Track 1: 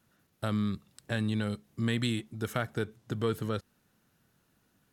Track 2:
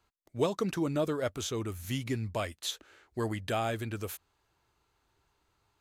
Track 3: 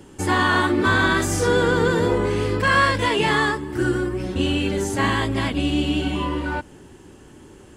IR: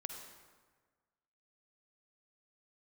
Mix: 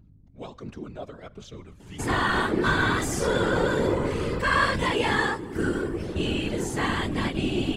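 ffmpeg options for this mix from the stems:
-filter_complex "[0:a]asubboost=boost=11.5:cutoff=190,acrusher=bits=7:mix=0:aa=0.5,adelay=1600,volume=1dB,afade=type=out:start_time=2.83:duration=0.69:silence=0.281838,afade=type=in:start_time=4.41:duration=0.27:silence=0.281838[link_01];[1:a]lowpass=5100,aphaser=in_gain=1:out_gain=1:delay=1.8:decay=0.48:speed=1.4:type=triangular,aeval=exprs='val(0)+0.00708*(sin(2*PI*50*n/s)+sin(2*PI*2*50*n/s)/2+sin(2*PI*3*50*n/s)/3+sin(2*PI*4*50*n/s)/4+sin(2*PI*5*50*n/s)/5)':channel_layout=same,volume=-4.5dB,asplit=2[link_02][link_03];[link_03]volume=-11.5dB[link_04];[2:a]adelay=1800,volume=1dB[link_05];[3:a]atrim=start_sample=2205[link_06];[link_04][link_06]afir=irnorm=-1:irlink=0[link_07];[link_01][link_02][link_05][link_07]amix=inputs=4:normalize=0,afftfilt=real='hypot(re,im)*cos(2*PI*random(0))':imag='hypot(re,im)*sin(2*PI*random(1))':win_size=512:overlap=0.75"

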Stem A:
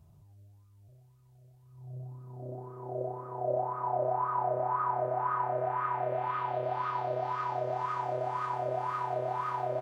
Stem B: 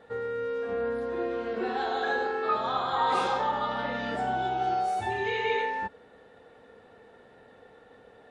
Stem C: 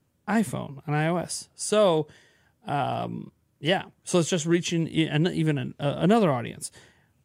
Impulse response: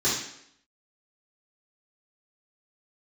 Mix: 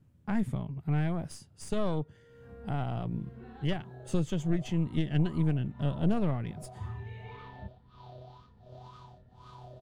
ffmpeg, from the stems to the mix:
-filter_complex "[0:a]highshelf=frequency=2700:width_type=q:width=3:gain=11.5,tremolo=f=1.4:d=0.96,acompressor=threshold=-36dB:ratio=5,adelay=1050,volume=-13dB[link_01];[1:a]asubboost=boost=9:cutoff=160,adelay=1800,volume=-19dB[link_02];[2:a]volume=-3.5dB,asplit=2[link_03][link_04];[link_04]apad=whole_len=445487[link_05];[link_02][link_05]sidechaincompress=threshold=-30dB:ratio=8:attack=8.1:release=751[link_06];[link_06][link_03]amix=inputs=2:normalize=0,aeval=exprs='0.237*(cos(1*acos(clip(val(0)/0.237,-1,1)))-cos(1*PI/2))+0.0422*(cos(4*acos(clip(val(0)/0.237,-1,1)))-cos(4*PI/2))':channel_layout=same,acompressor=threshold=-52dB:ratio=1.5,volume=0dB[link_07];[link_01][link_07]amix=inputs=2:normalize=0,bass=frequency=250:gain=14,treble=frequency=4000:gain=-6"

